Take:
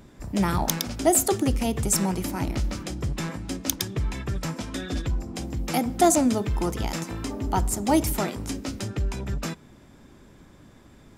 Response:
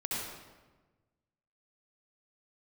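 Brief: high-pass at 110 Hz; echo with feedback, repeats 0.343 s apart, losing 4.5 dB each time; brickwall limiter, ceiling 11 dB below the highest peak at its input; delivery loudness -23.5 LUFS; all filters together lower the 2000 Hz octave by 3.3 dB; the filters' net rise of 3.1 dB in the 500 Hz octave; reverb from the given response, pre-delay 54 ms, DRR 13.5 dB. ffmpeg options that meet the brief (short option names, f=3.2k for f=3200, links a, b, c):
-filter_complex "[0:a]highpass=110,equalizer=f=500:t=o:g=5,equalizer=f=2k:t=o:g=-4.5,alimiter=limit=-15.5dB:level=0:latency=1,aecho=1:1:343|686|1029|1372|1715|2058|2401|2744|3087:0.596|0.357|0.214|0.129|0.0772|0.0463|0.0278|0.0167|0.01,asplit=2[a][b];[1:a]atrim=start_sample=2205,adelay=54[c];[b][c]afir=irnorm=-1:irlink=0,volume=-18dB[d];[a][d]amix=inputs=2:normalize=0,volume=3dB"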